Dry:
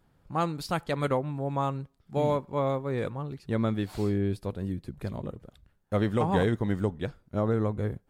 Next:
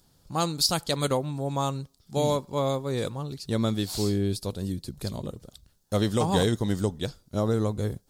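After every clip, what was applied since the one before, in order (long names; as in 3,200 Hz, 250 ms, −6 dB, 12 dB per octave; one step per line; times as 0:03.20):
high shelf with overshoot 3,200 Hz +14 dB, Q 1.5
level +1.5 dB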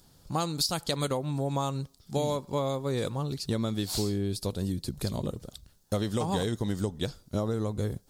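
downward compressor, threshold −29 dBFS, peak gain reduction 10.5 dB
level +3.5 dB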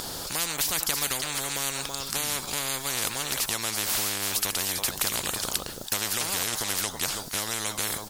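single-tap delay 328 ms −20 dB
every bin compressed towards the loudest bin 10 to 1
level +9 dB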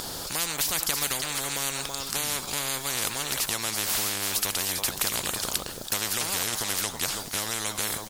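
single-tap delay 419 ms −16 dB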